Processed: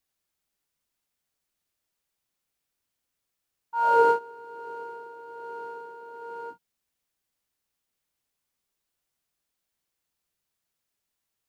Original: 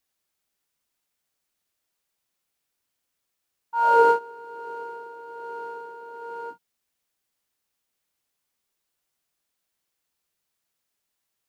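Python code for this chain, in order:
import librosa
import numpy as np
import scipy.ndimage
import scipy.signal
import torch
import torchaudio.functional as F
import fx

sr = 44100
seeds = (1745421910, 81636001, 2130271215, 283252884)

y = fx.low_shelf(x, sr, hz=180.0, db=5.5)
y = y * librosa.db_to_amplitude(-3.0)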